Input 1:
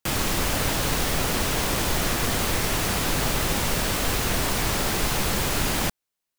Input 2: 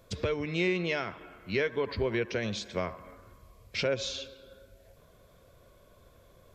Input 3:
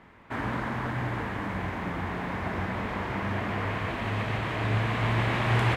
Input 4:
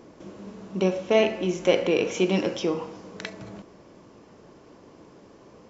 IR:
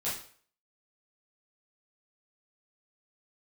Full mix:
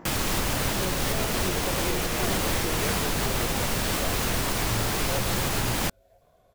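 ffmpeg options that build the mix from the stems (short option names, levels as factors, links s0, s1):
-filter_complex "[0:a]volume=0.944[s0];[1:a]equalizer=f=720:t=o:w=0.37:g=15,adelay=1250,volume=0.473[s1];[2:a]lowpass=1200,acompressor=mode=upward:threshold=0.0224:ratio=2.5,flanger=delay=17:depth=7.5:speed=0.86,volume=0.75[s2];[3:a]alimiter=limit=0.15:level=0:latency=1,volume=0.531[s3];[s0][s1][s2][s3]amix=inputs=4:normalize=0,alimiter=limit=0.178:level=0:latency=1:release=233"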